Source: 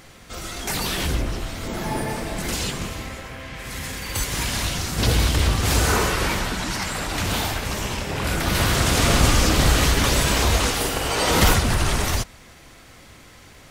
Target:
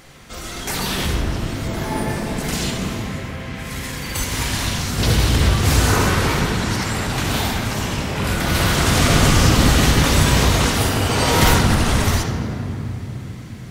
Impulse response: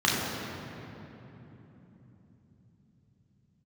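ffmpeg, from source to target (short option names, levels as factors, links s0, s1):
-filter_complex "[0:a]asplit=2[s0][s1];[1:a]atrim=start_sample=2205,adelay=38[s2];[s1][s2]afir=irnorm=-1:irlink=0,volume=0.112[s3];[s0][s3]amix=inputs=2:normalize=0,volume=1.12"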